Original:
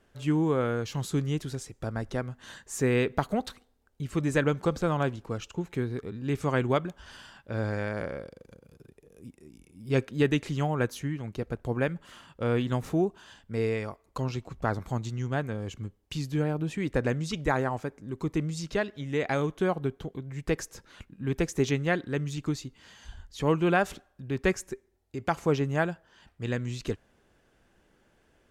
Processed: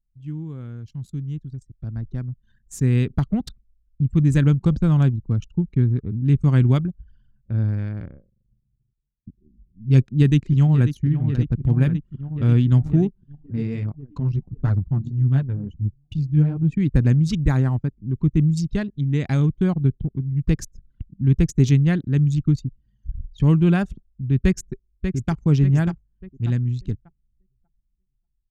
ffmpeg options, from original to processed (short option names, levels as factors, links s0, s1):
-filter_complex "[0:a]asplit=2[s0][s1];[s1]afade=t=in:st=9.98:d=0.01,afade=t=out:st=10.9:d=0.01,aecho=0:1:540|1080|1620|2160|2700|3240|3780|4320|4860|5400|5940|6480:0.298538|0.238831|0.191064|0.152852|0.122281|0.097825|0.07826|0.062608|0.0500864|0.0400691|0.0320553|0.0256442[s2];[s0][s2]amix=inputs=2:normalize=0,asplit=3[s3][s4][s5];[s3]afade=t=out:st=13.07:d=0.02[s6];[s4]flanger=delay=6.6:depth=8.3:regen=9:speed=1.5:shape=triangular,afade=t=in:st=13.07:d=0.02,afade=t=out:st=16.63:d=0.02[s7];[s5]afade=t=in:st=16.63:d=0.02[s8];[s6][s7][s8]amix=inputs=3:normalize=0,asplit=2[s9][s10];[s10]afade=t=in:st=24.41:d=0.01,afade=t=out:st=25.42:d=0.01,aecho=0:1:590|1180|1770|2360|2950|3540:0.473151|0.236576|0.118288|0.0591439|0.029572|0.014786[s11];[s9][s11]amix=inputs=2:normalize=0,asplit=2[s12][s13];[s12]atrim=end=9.27,asetpts=PTS-STARTPTS,afade=t=out:st=6.76:d=2.51[s14];[s13]atrim=start=9.27,asetpts=PTS-STARTPTS,afade=t=in:d=0.004:c=hsin[s15];[s14][s15]concat=n=2:v=0:a=1,anlmdn=1.58,firequalizer=gain_entry='entry(130,0);entry(480,-22);entry(4400,-12)':delay=0.05:min_phase=1,dynaudnorm=f=590:g=9:m=6.68"